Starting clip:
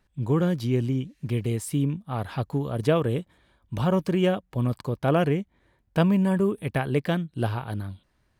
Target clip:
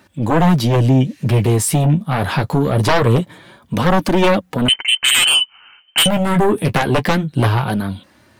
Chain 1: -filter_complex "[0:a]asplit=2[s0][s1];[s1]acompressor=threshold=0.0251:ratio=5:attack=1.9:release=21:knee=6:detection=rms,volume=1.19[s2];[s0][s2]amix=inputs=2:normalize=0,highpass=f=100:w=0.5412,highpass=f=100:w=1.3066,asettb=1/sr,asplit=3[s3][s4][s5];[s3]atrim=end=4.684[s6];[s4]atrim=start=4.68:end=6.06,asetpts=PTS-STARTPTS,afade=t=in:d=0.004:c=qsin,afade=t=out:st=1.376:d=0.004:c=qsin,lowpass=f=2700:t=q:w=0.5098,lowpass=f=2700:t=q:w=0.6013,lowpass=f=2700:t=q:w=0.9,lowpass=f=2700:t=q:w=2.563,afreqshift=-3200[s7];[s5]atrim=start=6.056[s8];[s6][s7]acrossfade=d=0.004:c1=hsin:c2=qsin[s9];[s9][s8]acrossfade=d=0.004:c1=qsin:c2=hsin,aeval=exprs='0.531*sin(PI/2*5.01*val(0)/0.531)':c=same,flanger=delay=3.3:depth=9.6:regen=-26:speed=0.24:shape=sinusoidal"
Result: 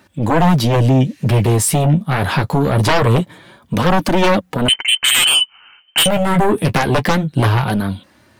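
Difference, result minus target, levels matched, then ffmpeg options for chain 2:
compression: peak gain reduction -8.5 dB
-filter_complex "[0:a]asplit=2[s0][s1];[s1]acompressor=threshold=0.0075:ratio=5:attack=1.9:release=21:knee=6:detection=rms,volume=1.19[s2];[s0][s2]amix=inputs=2:normalize=0,highpass=f=100:w=0.5412,highpass=f=100:w=1.3066,asettb=1/sr,asplit=3[s3][s4][s5];[s3]atrim=end=4.684[s6];[s4]atrim=start=4.68:end=6.06,asetpts=PTS-STARTPTS,afade=t=in:d=0.004:c=qsin,afade=t=out:st=1.376:d=0.004:c=qsin,lowpass=f=2700:t=q:w=0.5098,lowpass=f=2700:t=q:w=0.6013,lowpass=f=2700:t=q:w=0.9,lowpass=f=2700:t=q:w=2.563,afreqshift=-3200[s7];[s5]atrim=start=6.056[s8];[s6][s7]acrossfade=d=0.004:c1=hsin:c2=qsin[s9];[s9][s8]acrossfade=d=0.004:c1=qsin:c2=hsin,aeval=exprs='0.531*sin(PI/2*5.01*val(0)/0.531)':c=same,flanger=delay=3.3:depth=9.6:regen=-26:speed=0.24:shape=sinusoidal"

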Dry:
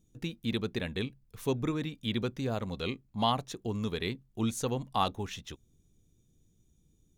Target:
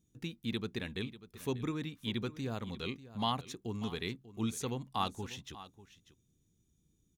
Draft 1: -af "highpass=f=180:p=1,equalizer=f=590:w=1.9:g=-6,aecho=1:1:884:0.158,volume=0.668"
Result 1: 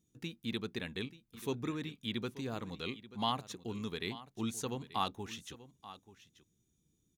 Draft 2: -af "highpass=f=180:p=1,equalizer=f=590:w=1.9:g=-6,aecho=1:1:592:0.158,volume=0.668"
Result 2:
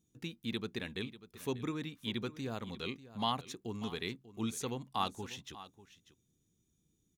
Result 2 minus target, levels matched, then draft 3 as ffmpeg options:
125 Hz band -2.5 dB
-af "highpass=f=70:p=1,equalizer=f=590:w=1.9:g=-6,aecho=1:1:592:0.158,volume=0.668"

